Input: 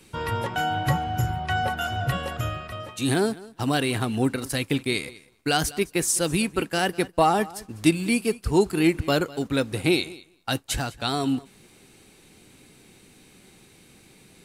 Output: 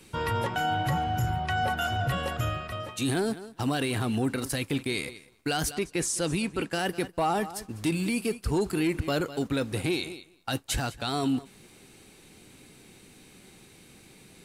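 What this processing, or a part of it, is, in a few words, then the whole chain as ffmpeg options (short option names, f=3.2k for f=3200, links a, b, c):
soft clipper into limiter: -filter_complex "[0:a]asoftclip=type=tanh:threshold=-11.5dB,alimiter=limit=-19.5dB:level=0:latency=1:release=19,asettb=1/sr,asplit=3[a][b][c];[a]atrim=end=5.754[d];[b]atrim=start=5.75:end=6.74,asetpts=PTS-STARTPTS,afade=t=in:d=0.004:c=qsin,afade=t=out:st=0.986:d=0.004:c=qsin,lowpass=9k[e];[c]atrim=start=6.736[f];[d][e]acrossfade=d=0.004:c1=hsin:c2=qsin[g];[g][f]acrossfade=d=0.004:c1=qsin:c2=hsin"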